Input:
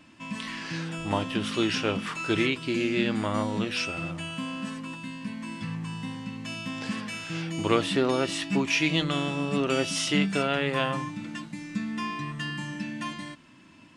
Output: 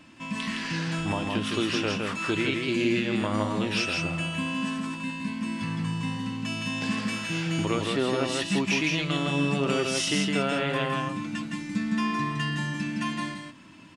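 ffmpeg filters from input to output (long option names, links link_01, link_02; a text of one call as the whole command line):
ffmpeg -i in.wav -af "alimiter=limit=-18dB:level=0:latency=1:release=429,aecho=1:1:163:0.668,acontrast=89,volume=-5dB" out.wav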